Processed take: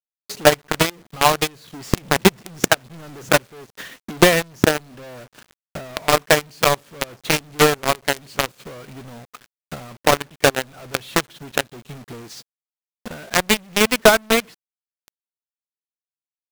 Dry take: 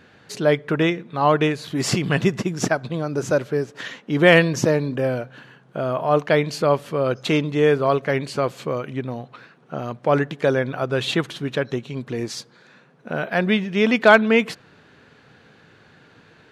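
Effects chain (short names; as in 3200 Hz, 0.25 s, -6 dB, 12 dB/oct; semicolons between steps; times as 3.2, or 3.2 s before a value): companded quantiser 2-bit; transient shaper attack +11 dB, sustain -7 dB; gain -12 dB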